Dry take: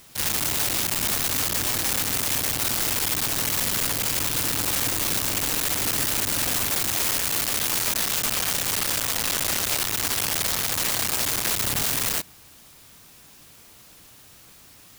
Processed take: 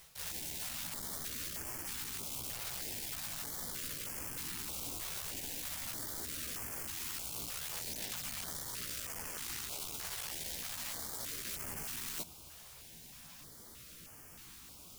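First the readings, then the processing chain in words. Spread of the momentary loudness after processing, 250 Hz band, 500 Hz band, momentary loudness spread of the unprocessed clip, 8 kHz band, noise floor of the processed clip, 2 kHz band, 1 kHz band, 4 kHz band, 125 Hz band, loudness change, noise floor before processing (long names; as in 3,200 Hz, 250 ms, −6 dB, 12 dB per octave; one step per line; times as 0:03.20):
12 LU, −17.5 dB, −18.0 dB, 1 LU, −16.5 dB, −54 dBFS, −18.0 dB, −18.5 dB, −17.5 dB, −17.0 dB, −17.0 dB, −50 dBFS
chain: reversed playback
downward compressor 12 to 1, threshold −34 dBFS, peak gain reduction 14.5 dB
reversed playback
multi-voice chorus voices 4, 1.4 Hz, delay 15 ms, depth 3 ms
notch on a step sequencer 3.2 Hz 270–3,800 Hz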